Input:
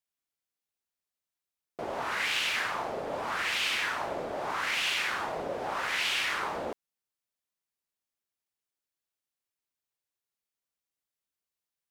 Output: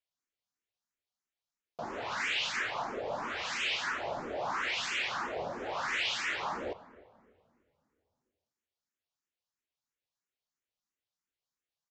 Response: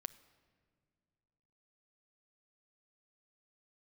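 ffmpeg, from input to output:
-filter_complex "[0:a]aresample=16000,asoftclip=type=tanh:threshold=-26dB,aresample=44100,asplit=2[a][b];[b]adelay=299,lowpass=f=1k:p=1,volume=-20dB,asplit=2[c][d];[d]adelay=299,lowpass=f=1k:p=1,volume=0.43,asplit=2[e][f];[f]adelay=299,lowpass=f=1k:p=1,volume=0.43[g];[a][c][e][g]amix=inputs=4:normalize=0[h];[1:a]atrim=start_sample=2205,asetrate=36162,aresample=44100[i];[h][i]afir=irnorm=-1:irlink=0,asplit=2[j][k];[k]afreqshift=3[l];[j][l]amix=inputs=2:normalize=1,volume=4dB"

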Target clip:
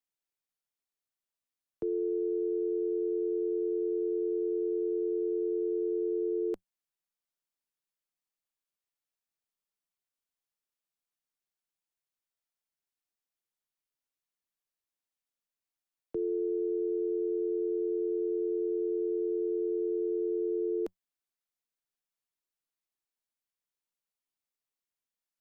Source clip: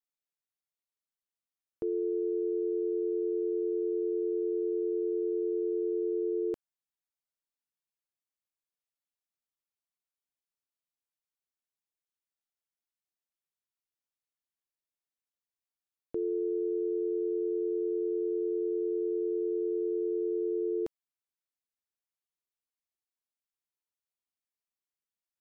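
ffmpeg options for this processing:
-filter_complex "[0:a]equalizer=f=92:t=o:w=0.48:g=8.5,acrossover=split=120|240[a][b][c];[a]aeval=exprs='abs(val(0))':c=same[d];[d][b][c]amix=inputs=3:normalize=0"

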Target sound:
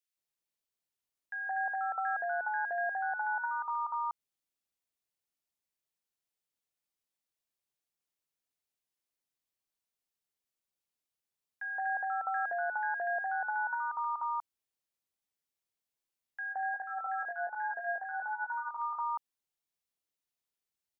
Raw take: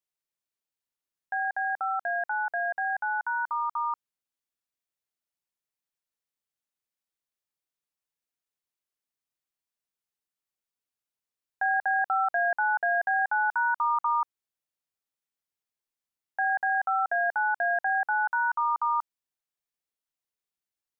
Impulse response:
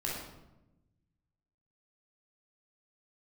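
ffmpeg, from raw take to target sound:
-filter_complex "[0:a]alimiter=level_in=1dB:limit=-24dB:level=0:latency=1,volume=-1dB,asplit=3[a][b][c];[a]afade=t=out:st=16.5:d=0.02[d];[b]flanger=delay=20:depth=2.6:speed=1.2,afade=t=in:st=16.5:d=0.02,afade=t=out:st=18.78:d=0.02[e];[c]afade=t=in:st=18.78:d=0.02[f];[d][e][f]amix=inputs=3:normalize=0,acrossover=split=1400[g][h];[g]adelay=170[i];[i][h]amix=inputs=2:normalize=0"

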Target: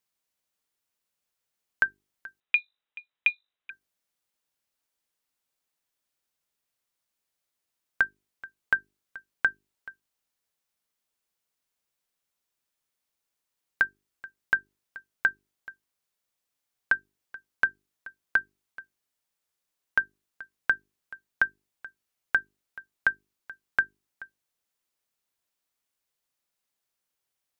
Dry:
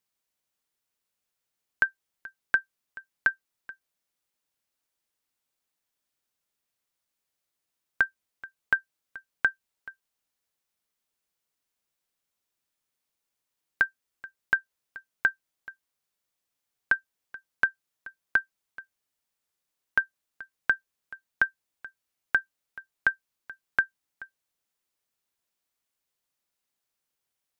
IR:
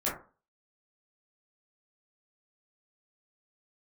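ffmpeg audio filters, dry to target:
-filter_complex "[0:a]bandreject=f=50:t=h:w=6,bandreject=f=100:t=h:w=6,bandreject=f=150:t=h:w=6,bandreject=f=200:t=h:w=6,bandreject=f=250:t=h:w=6,bandreject=f=300:t=h:w=6,bandreject=f=350:t=h:w=6,bandreject=f=400:t=h:w=6,asettb=1/sr,asplit=3[a][b][c];[a]atrim=end=2.404[d];[b]atrim=start=2.4:end=3.7,asetpts=PTS-STARTPTS,afade=t=in:d=0.004:c=qsin,afade=t=out:st=1.296:d=0.004:c=qsin,lowpass=f=3.4k:t=q:w=0.5098,lowpass=f=3.4k:t=q:w=0.6013,lowpass=f=3.4k:t=q:w=0.9,lowpass=f=3.4k:t=q:w=2.563,afreqshift=-4000[e];[c]atrim=start=3.696[f];[d][e]acrossfade=d=0.004:c1=hsin:c2=qsin[g];[g][f]acrossfade=d=0.004:c1=qsin:c2=hsin"

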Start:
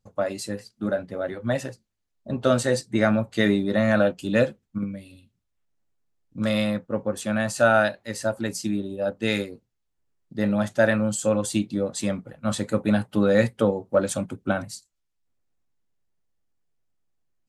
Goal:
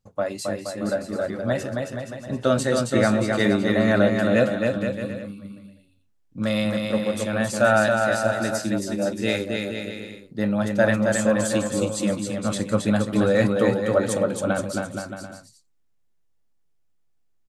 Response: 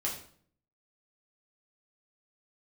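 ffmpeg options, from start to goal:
-af "aecho=1:1:270|472.5|624.4|738.3|823.7:0.631|0.398|0.251|0.158|0.1"

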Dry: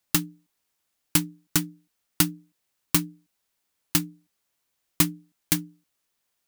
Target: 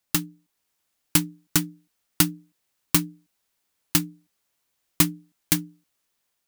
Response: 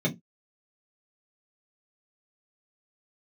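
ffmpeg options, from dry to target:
-af "dynaudnorm=f=390:g=3:m=11.5dB,volume=-1dB"

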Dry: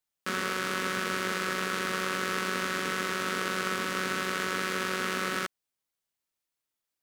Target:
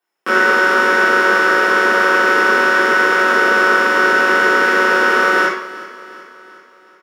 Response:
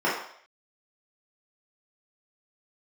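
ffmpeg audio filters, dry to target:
-filter_complex "[0:a]asettb=1/sr,asplit=3[a][b][c];[a]atrim=end=3.974[d];[b]atrim=start=3.97:end=4.9,asetpts=PTS-STARTPTS,afade=t=in:d=0.004:c=qsin,afade=t=out:st=0.926:d=0.004:c=qsin,aeval=exprs='val(0)+0.00794*(sin(2*PI*60*n/s)+sin(2*PI*2*60*n/s)/2+sin(2*PI*3*60*n/s)/3+sin(2*PI*4*60*n/s)/4+sin(2*PI*5*60*n/s)/5)':c=same[e];[c]atrim=start=4.896[f];[d][e]acrossfade=d=0.004:c1=hsin:c2=qsin[g];[g][f]acrossfade=d=0.004:c1=qsin:c2=hsin,highpass=260,aecho=1:1:372|744|1116|1488|1860:0.141|0.0763|0.0412|0.0222|0.012[h];[1:a]atrim=start_sample=2205,afade=t=out:st=0.26:d=0.01,atrim=end_sample=11907[i];[h][i]afir=irnorm=-1:irlink=0,volume=2.5dB"

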